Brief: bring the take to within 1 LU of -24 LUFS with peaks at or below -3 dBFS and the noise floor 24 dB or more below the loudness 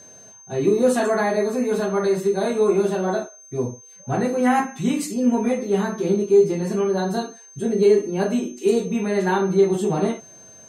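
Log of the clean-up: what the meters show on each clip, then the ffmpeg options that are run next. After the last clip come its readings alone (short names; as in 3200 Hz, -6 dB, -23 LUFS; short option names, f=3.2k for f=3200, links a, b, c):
steady tone 6300 Hz; tone level -44 dBFS; loudness -21.0 LUFS; peak -6.5 dBFS; loudness target -24.0 LUFS
-> -af "bandreject=f=6.3k:w=30"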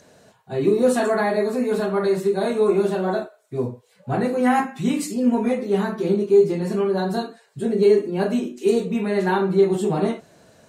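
steady tone none; loudness -21.0 LUFS; peak -6.5 dBFS; loudness target -24.0 LUFS
-> -af "volume=-3dB"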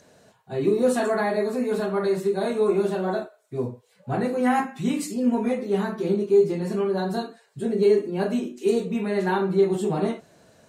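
loudness -24.0 LUFS; peak -9.5 dBFS; noise floor -61 dBFS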